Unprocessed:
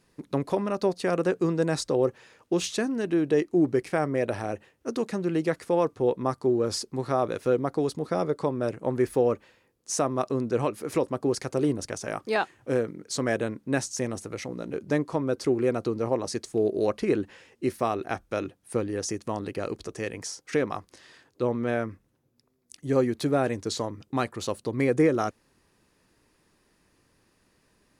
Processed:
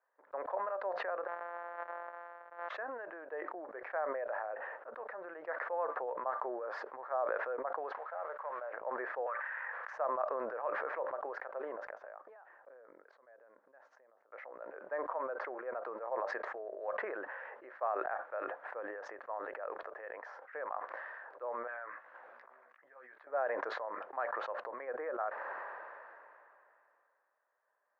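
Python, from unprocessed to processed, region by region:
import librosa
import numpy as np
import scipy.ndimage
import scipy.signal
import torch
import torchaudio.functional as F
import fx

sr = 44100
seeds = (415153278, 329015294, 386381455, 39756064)

y = fx.chain(x, sr, fx.sample_sort(block=256),
    fx.over_compress(threshold_db=-31.0, ratio=-1.0), at=(1.27, 2.69))
y = fx.chain(y, sr, fx.cvsd(bps=32000),
    fx.highpass(hz=700.0, slope=12), at=(7.92, 8.73))
y = fx.chain(y, sr, fx.highpass(hz=980.0, slope=12),
    fx.peak_eq(hz=1800.0, db=10.0, octaves=1.2),
    fx.env_flatten(amount_pct=100), at=(9.26, 9.93))
y = fx.chain(y, sr, fx.low_shelf(hz=340.0, db=11.0),
    fx.gate_flip(shuts_db=-26.0, range_db=-26), at=(11.9, 14.32))
y = fx.chain(y, sr, fx.tone_stack(knobs='5-5-5'),
    fx.doubler(ms=16.0, db=-5.5),
    fx.band_squash(depth_pct=100), at=(21.67, 23.27))
y = scipy.signal.sosfilt(scipy.signal.ellip(3, 1.0, 80, [570.0, 1700.0], 'bandpass', fs=sr, output='sos'), y)
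y = fx.sustainer(y, sr, db_per_s=22.0)
y = F.gain(torch.from_numpy(y), -8.0).numpy()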